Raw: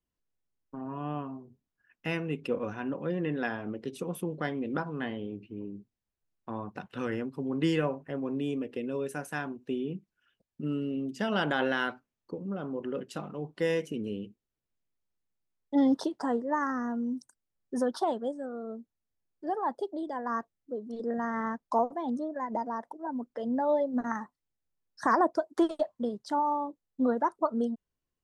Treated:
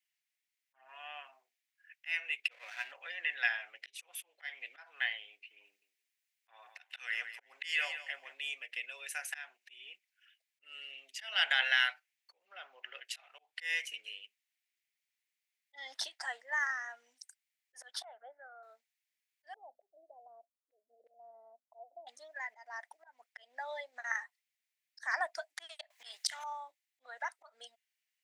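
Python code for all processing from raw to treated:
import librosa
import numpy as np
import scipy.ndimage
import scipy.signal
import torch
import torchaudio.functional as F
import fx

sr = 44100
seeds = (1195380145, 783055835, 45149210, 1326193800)

y = fx.chain(x, sr, fx.comb(ms=3.1, depth=0.31),
    fx.backlash(play_db=-43.0), at=(2.51, 2.92))
y = fx.chain(y, sr, fx.high_shelf(hz=4100.0, db=3.5),
    fx.echo_feedback(ms=169, feedback_pct=22, wet_db=-13), at=(5.65, 8.34))
y = fx.chain(y, sr, fx.highpass(hz=180.0, slope=12),
    fx.peak_eq(hz=8700.0, db=-11.0, octaves=0.58), at=(12.45, 13.05))
y = fx.chain(y, sr, fx.lowpass(hz=1600.0, slope=24),
    fx.comb(ms=1.4, depth=0.38), at=(18.04, 18.63))
y = fx.chain(y, sr, fx.ellip_lowpass(hz=660.0, order=4, stop_db=60),
    fx.hum_notches(base_hz=50, count=6), at=(19.54, 22.07))
y = fx.chain(y, sr, fx.low_shelf(hz=330.0, db=6.5),
    fx.spectral_comp(ratio=2.0), at=(25.9, 26.44))
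y = fx.auto_swell(y, sr, attack_ms=216.0)
y = scipy.signal.sosfilt(scipy.signal.cheby1(4, 1.0, 710.0, 'highpass', fs=sr, output='sos'), y)
y = fx.high_shelf_res(y, sr, hz=1500.0, db=11.0, q=3.0)
y = y * 10.0 ** (-5.5 / 20.0)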